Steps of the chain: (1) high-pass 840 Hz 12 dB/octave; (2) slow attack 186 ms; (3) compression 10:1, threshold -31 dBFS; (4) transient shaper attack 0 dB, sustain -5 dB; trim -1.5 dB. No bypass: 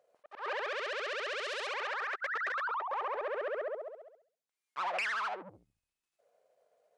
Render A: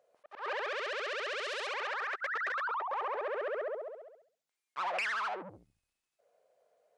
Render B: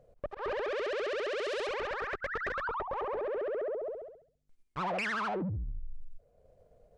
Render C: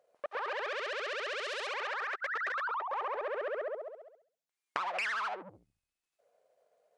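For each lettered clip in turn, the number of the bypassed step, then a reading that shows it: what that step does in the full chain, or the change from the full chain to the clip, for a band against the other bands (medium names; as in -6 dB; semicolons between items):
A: 4, 250 Hz band +1.5 dB; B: 1, 250 Hz band +17.0 dB; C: 2, crest factor change +7.0 dB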